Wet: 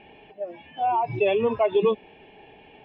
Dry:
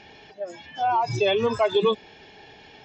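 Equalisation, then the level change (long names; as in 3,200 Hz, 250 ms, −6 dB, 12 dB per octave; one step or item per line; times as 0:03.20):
Chebyshev low-pass filter 2,800 Hz, order 4
parametric band 100 Hz −6 dB 1 octave
parametric band 1,500 Hz −11.5 dB 0.87 octaves
+2.0 dB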